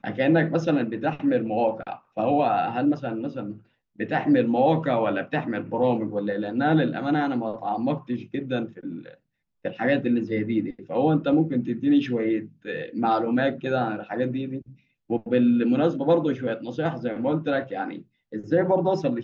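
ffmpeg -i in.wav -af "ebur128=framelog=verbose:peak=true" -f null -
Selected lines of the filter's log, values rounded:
Integrated loudness:
  I:         -24.5 LUFS
  Threshold: -35.0 LUFS
Loudness range:
  LRA:         3.3 LU
  Threshold: -45.1 LUFS
  LRA low:   -27.2 LUFS
  LRA high:  -23.9 LUFS
True peak:
  Peak:       -9.2 dBFS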